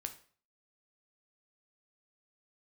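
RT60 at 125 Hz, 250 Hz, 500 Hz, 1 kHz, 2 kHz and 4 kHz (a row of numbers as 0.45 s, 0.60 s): 0.50 s, 0.45 s, 0.45 s, 0.45 s, 0.40 s, 0.40 s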